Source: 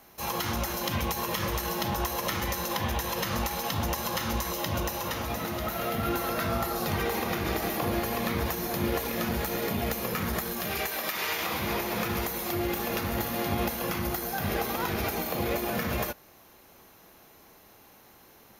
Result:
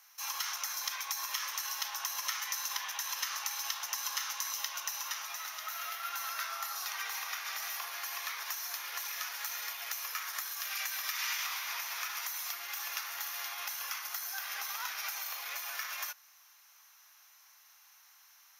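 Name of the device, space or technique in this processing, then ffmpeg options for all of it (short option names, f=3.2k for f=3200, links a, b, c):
headphones lying on a table: -filter_complex "[0:a]highpass=f=1.1k:w=0.5412,highpass=f=1.1k:w=1.3066,equalizer=f=5.8k:t=o:w=0.36:g=10,asettb=1/sr,asplit=3[a][b][c];[a]atrim=end=0.664[d];[b]atrim=start=0.66:end=1.31,asetpts=PTS-STARTPTS,afade=t=in:d=0.004:c=qsin,afade=t=out:st=0.646:d=0.004:c=qsin,bandreject=f=2.9k:w=8.4[e];[c]atrim=start=1.306[f];[d][e]acrossfade=d=0.004:c1=hsin:c2=qsin[g];[g][f]acrossfade=d=0.004:c1=qsin:c2=hsin,volume=-4.5dB"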